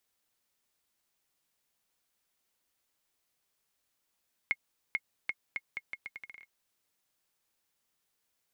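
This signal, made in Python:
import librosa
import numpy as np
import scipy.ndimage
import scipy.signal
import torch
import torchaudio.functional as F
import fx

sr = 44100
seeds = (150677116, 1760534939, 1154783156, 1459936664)

y = fx.bouncing_ball(sr, first_gap_s=0.44, ratio=0.78, hz=2160.0, decay_ms=47.0, level_db=-16.5)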